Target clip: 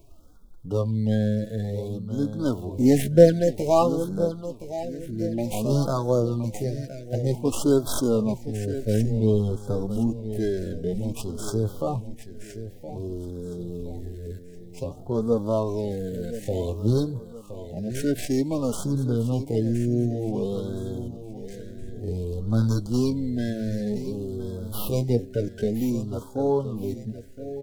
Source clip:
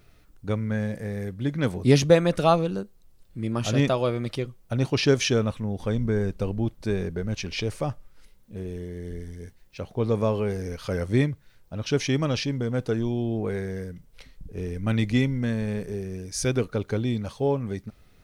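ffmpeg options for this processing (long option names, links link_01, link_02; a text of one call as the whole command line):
ffmpeg -i in.wav -filter_complex "[0:a]asplit=2[link_01][link_02];[link_02]acompressor=threshold=-38dB:ratio=5,volume=-3dB[link_03];[link_01][link_03]amix=inputs=2:normalize=0,flanger=delay=3:depth=6.6:regen=14:speed=0.58:shape=sinusoidal,atempo=0.66,acrossover=split=270|1500[link_04][link_05][link_06];[link_06]aeval=exprs='abs(val(0))':channel_layout=same[link_07];[link_04][link_05][link_07]amix=inputs=3:normalize=0,aecho=1:1:1019|2038|3057|4076:0.251|0.1|0.0402|0.0161,afftfilt=real='re*(1-between(b*sr/1024,990*pow(2300/990,0.5+0.5*sin(2*PI*0.54*pts/sr))/1.41,990*pow(2300/990,0.5+0.5*sin(2*PI*0.54*pts/sr))*1.41))':imag='im*(1-between(b*sr/1024,990*pow(2300/990,0.5+0.5*sin(2*PI*0.54*pts/sr))/1.41,990*pow(2300/990,0.5+0.5*sin(2*PI*0.54*pts/sr))*1.41))':win_size=1024:overlap=0.75,volume=3dB" out.wav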